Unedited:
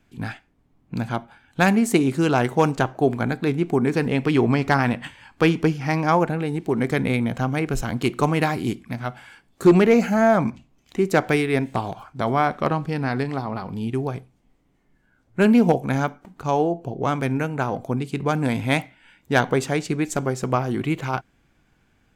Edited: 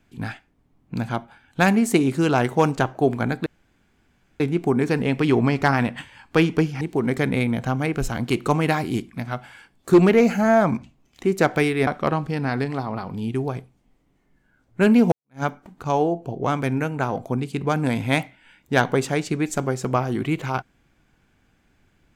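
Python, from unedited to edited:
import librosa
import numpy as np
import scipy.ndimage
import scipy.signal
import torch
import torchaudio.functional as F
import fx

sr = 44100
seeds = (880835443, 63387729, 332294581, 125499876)

y = fx.edit(x, sr, fx.insert_room_tone(at_s=3.46, length_s=0.94),
    fx.cut(start_s=5.87, length_s=0.67),
    fx.cut(start_s=11.6, length_s=0.86),
    fx.fade_in_span(start_s=15.71, length_s=0.31, curve='exp'), tone=tone)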